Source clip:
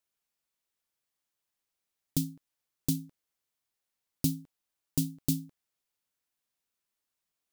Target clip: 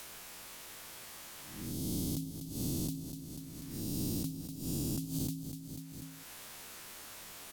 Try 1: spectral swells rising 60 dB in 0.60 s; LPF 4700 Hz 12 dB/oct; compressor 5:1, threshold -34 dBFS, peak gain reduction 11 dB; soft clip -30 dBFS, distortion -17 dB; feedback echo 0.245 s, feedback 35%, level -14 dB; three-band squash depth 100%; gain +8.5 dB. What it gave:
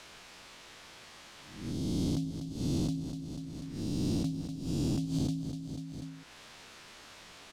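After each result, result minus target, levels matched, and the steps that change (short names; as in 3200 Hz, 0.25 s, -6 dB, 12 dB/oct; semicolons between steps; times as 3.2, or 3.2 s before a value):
8000 Hz band -10.5 dB; compressor: peak gain reduction -6.5 dB
change: LPF 17000 Hz 12 dB/oct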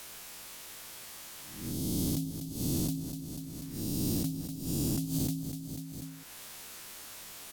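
compressor: peak gain reduction -6 dB
change: compressor 5:1, threshold -41.5 dBFS, peak gain reduction 18 dB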